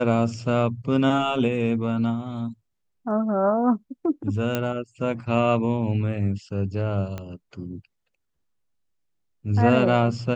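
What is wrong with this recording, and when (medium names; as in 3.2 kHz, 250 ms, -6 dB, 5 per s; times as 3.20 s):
4.55 s: pop -10 dBFS
7.18 s: pop -19 dBFS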